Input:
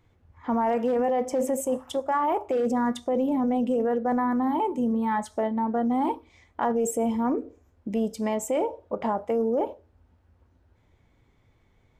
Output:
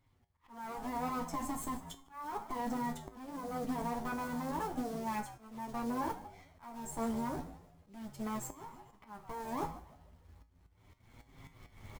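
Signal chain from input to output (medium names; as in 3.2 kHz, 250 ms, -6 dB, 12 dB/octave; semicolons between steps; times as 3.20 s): comb filter that takes the minimum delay 0.93 ms; recorder AGC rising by 16 dB/s; short-mantissa float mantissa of 2-bit; frequency-shifting echo 149 ms, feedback 41%, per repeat -85 Hz, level -15.5 dB; flange 0.35 Hz, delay 7.3 ms, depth 6.4 ms, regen -12%; slow attack 495 ms; dynamic bell 2.8 kHz, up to -5 dB, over -54 dBFS, Q 1.1; feedback comb 55 Hz, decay 0.32 s, harmonics odd, mix 70%; trim +1.5 dB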